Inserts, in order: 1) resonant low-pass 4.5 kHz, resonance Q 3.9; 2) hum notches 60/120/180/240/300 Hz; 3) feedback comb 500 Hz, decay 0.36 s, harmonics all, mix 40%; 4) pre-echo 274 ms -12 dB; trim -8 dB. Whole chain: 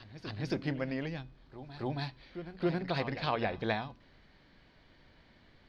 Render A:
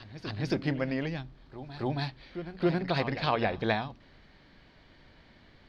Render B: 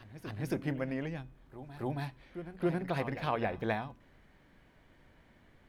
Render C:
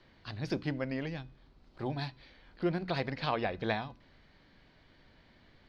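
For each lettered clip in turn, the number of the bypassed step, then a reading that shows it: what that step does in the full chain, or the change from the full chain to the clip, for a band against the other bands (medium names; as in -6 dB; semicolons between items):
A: 3, loudness change +4.5 LU; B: 1, 4 kHz band -7.0 dB; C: 4, momentary loudness spread change -3 LU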